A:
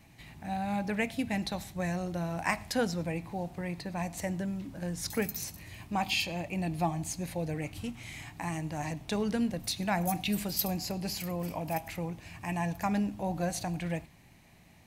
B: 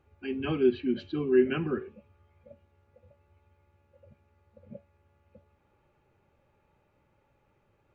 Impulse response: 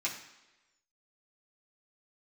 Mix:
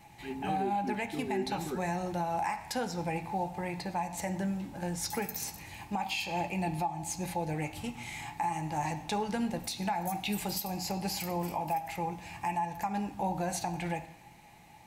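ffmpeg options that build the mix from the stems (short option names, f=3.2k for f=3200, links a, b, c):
-filter_complex "[0:a]equalizer=f=850:w=4.1:g=13,alimiter=limit=-20dB:level=0:latency=1:release=358,volume=-0.5dB,asplit=2[a][b];[b]volume=-8dB[c];[1:a]volume=-6.5dB[d];[2:a]atrim=start_sample=2205[e];[c][e]afir=irnorm=-1:irlink=0[f];[a][d][f]amix=inputs=3:normalize=0,alimiter=limit=-23dB:level=0:latency=1:release=172"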